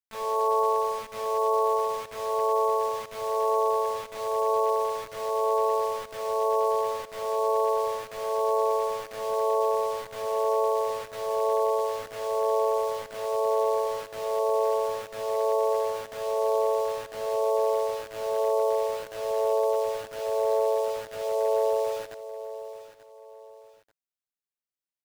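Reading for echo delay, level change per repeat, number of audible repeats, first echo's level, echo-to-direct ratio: 886 ms, −9.0 dB, 2, −14.0 dB, −13.5 dB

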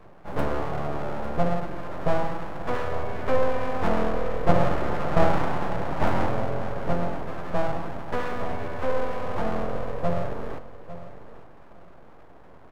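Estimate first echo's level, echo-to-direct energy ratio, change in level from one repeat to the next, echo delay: −14.5 dB, −14.5 dB, −15.0 dB, 852 ms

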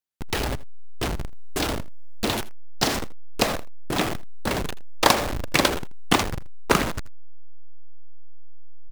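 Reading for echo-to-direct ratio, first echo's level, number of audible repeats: −19.5 dB, −19.5 dB, 1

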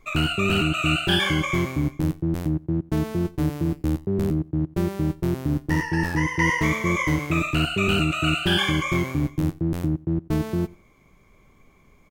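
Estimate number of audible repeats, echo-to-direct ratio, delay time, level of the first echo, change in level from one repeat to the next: 1, −23.0 dB, 89 ms, −23.0 dB, repeats not evenly spaced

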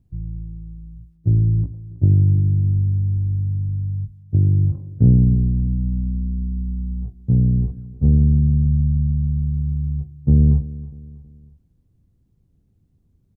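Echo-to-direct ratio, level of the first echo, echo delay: −17.0 dB, −18.0 dB, 321 ms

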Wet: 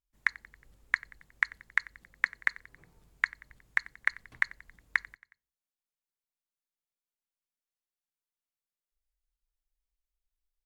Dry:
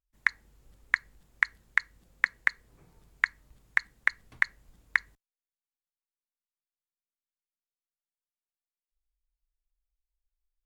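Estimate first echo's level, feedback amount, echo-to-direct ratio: −22.0 dB, 57%, −20.5 dB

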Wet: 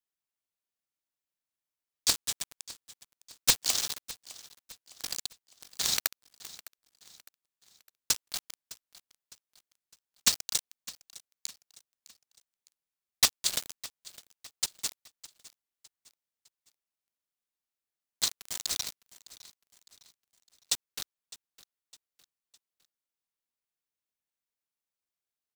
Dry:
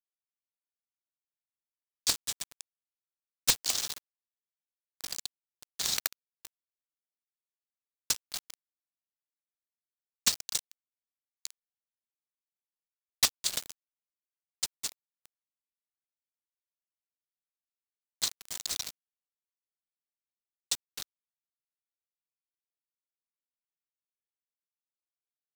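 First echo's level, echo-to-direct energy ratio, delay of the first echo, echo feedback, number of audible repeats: −19.0 dB, −18.0 dB, 608 ms, 43%, 3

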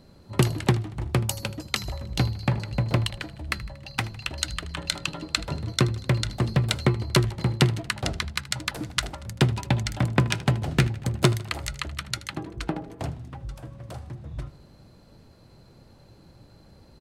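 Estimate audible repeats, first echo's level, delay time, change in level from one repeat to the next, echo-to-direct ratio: 4, −18.5 dB, 78 ms, −4.5 dB, −16.5 dB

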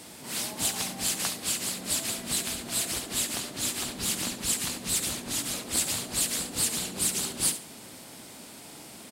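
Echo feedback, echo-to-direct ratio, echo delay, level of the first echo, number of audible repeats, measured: 24%, −11.5 dB, 70 ms, −12.0 dB, 2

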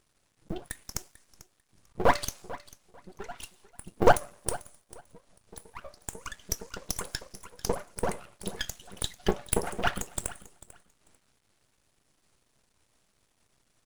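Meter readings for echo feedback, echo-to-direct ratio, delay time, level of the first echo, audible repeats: 19%, −18.0 dB, 444 ms, −18.0 dB, 2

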